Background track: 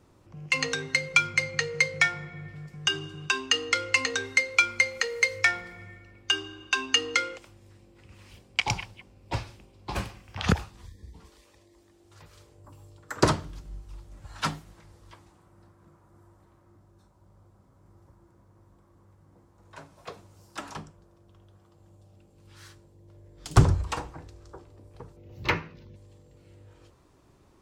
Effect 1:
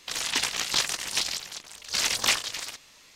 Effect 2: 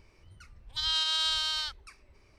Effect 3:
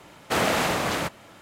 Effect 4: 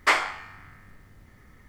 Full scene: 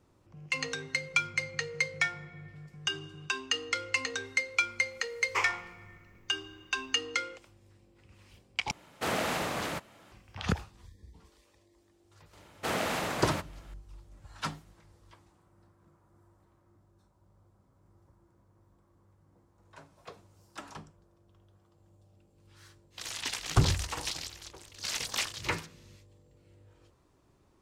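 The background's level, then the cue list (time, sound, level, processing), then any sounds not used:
background track −6.5 dB
0:05.28: mix in 4 −12.5 dB + EQ curve with evenly spaced ripples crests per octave 0.76, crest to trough 12 dB
0:08.71: overwrite with 3 −8 dB
0:12.33: mix in 3 −8.5 dB
0:22.90: mix in 1 −9 dB, fades 0.05 s
not used: 2

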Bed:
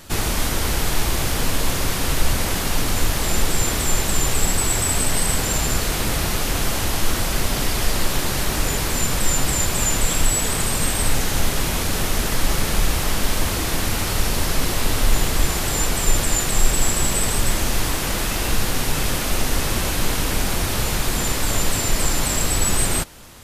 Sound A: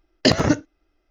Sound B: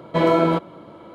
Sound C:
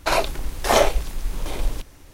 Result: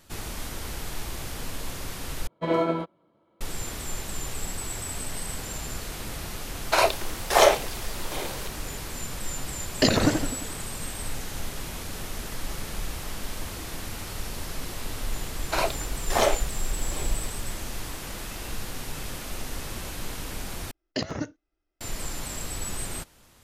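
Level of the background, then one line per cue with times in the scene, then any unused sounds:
bed −13.5 dB
0:02.27: overwrite with B −5.5 dB + expander for the loud parts 2.5 to 1, over −27 dBFS
0:06.66: mix in C + high-pass filter 350 Hz 24 dB per octave
0:09.57: mix in A −4.5 dB + feedback echo with a swinging delay time 87 ms, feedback 57%, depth 216 cents, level −7 dB
0:15.46: mix in C −5.5 dB
0:20.71: overwrite with A −13.5 dB

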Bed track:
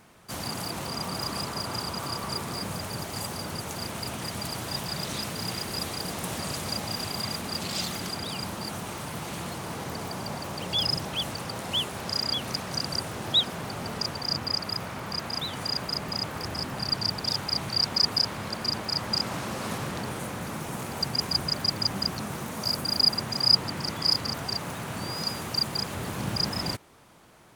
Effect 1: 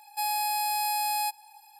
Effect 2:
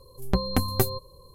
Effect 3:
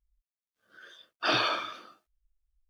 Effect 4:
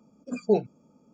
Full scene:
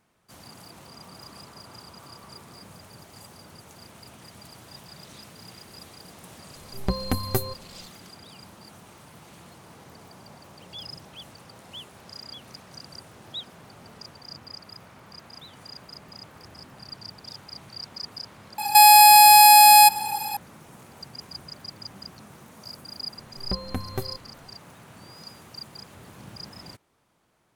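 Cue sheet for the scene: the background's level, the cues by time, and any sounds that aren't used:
bed track −13.5 dB
0:06.55: mix in 2 −2 dB
0:18.58: mix in 1 −3 dB + boost into a limiter +27 dB
0:23.18: mix in 2 −7 dB + high-shelf EQ 6,500 Hz −9.5 dB
not used: 3, 4

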